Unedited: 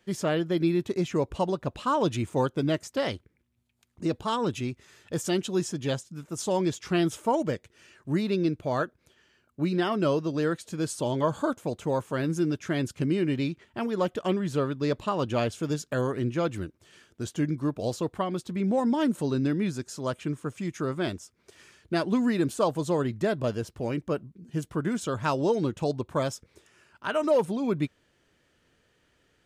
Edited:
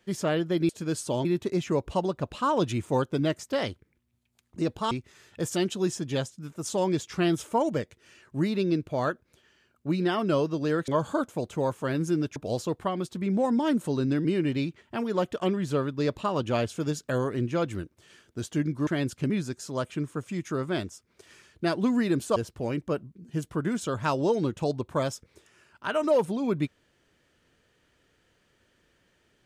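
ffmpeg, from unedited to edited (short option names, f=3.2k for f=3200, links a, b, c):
-filter_complex "[0:a]asplit=10[a][b][c][d][e][f][g][h][i][j];[a]atrim=end=0.692[k];[b]atrim=start=10.608:end=11.172[l];[c]atrim=start=0.688:end=4.352[m];[d]atrim=start=4.638:end=10.612[n];[e]atrim=start=11.168:end=12.652[o];[f]atrim=start=17.698:end=19.592[p];[g]atrim=start=13.078:end=17.702[q];[h]atrim=start=12.648:end=13.082[r];[i]atrim=start=19.588:end=22.652[s];[j]atrim=start=23.558[t];[k][l]acrossfade=d=0.004:c1=hsin:c2=hsin[u];[u][m]acrossfade=d=0.004:c1=hsin:c2=hsin[v];[v][n]acrossfade=d=0.004:c1=hsin:c2=hsin[w];[w][o]acrossfade=d=0.004:c1=hsin:c2=hsin[x];[x][p]acrossfade=d=0.004:c1=hsin:c2=hsin[y];[y][q]acrossfade=d=0.004:c1=hsin:c2=hsin[z];[z][r]acrossfade=d=0.004:c1=hsin:c2=hsin[aa];[aa][s]acrossfade=d=0.004:c1=hsin:c2=hsin[ab];[ab][t]acrossfade=d=0.004:c1=hsin:c2=hsin"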